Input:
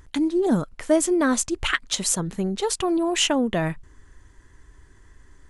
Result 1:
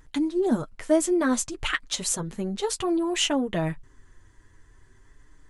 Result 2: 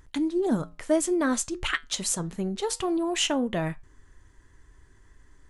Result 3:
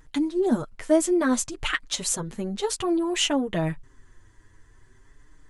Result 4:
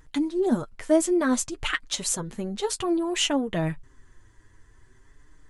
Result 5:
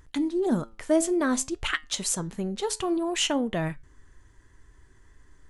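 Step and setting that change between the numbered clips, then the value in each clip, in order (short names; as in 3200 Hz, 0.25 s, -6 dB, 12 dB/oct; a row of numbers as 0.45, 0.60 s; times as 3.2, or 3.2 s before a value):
flange, regen: -22, -82, 0, +26, +84%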